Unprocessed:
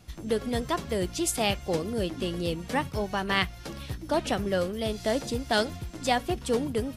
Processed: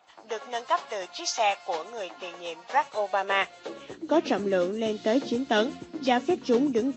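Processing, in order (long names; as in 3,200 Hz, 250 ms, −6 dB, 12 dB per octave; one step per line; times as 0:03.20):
hearing-aid frequency compression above 2,300 Hz 1.5 to 1
high-pass filter sweep 800 Hz → 280 Hz, 0:02.71–0:04.43
one half of a high-frequency compander decoder only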